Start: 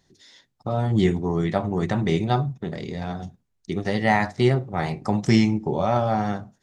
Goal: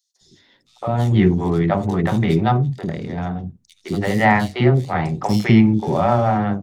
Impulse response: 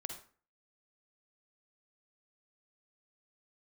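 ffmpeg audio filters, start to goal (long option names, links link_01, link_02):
-filter_complex "[0:a]asplit=2[link_01][link_02];[link_02]adynamicsmooth=sensitivity=6:basefreq=770,volume=0dB[link_03];[link_01][link_03]amix=inputs=2:normalize=0,acrossover=split=460|3900[link_04][link_05][link_06];[link_05]adelay=160[link_07];[link_04]adelay=210[link_08];[link_08][link_07][link_06]amix=inputs=3:normalize=0"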